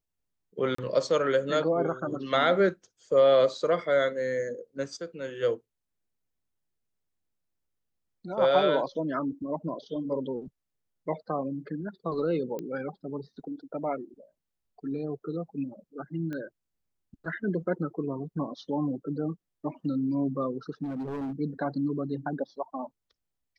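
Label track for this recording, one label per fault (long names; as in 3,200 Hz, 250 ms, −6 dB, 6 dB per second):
0.750000	0.780000	drop-out 34 ms
12.590000	12.590000	click −23 dBFS
16.330000	16.330000	click −25 dBFS
20.830000	21.330000	clipping −30.5 dBFS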